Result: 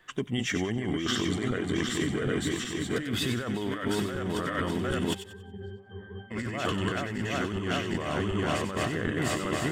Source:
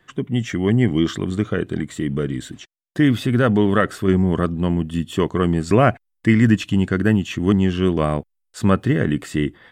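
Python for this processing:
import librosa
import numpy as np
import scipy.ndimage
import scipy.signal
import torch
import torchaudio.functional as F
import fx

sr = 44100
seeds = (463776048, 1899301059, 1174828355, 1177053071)

p1 = fx.reverse_delay_fb(x, sr, ms=378, feedback_pct=78, wet_db=-5.0)
p2 = fx.peak_eq(p1, sr, hz=150.0, db=-9.5, octaves=3.0)
p3 = fx.over_compress(p2, sr, threshold_db=-27.0, ratio=-1.0)
p4 = fx.octave_resonator(p3, sr, note='G', decay_s=0.26, at=(5.13, 6.3), fade=0.02)
p5 = p4 + fx.echo_wet_highpass(p4, sr, ms=93, feedback_pct=31, hz=2300.0, wet_db=-8, dry=0)
y = F.gain(torch.from_numpy(p5), -3.0).numpy()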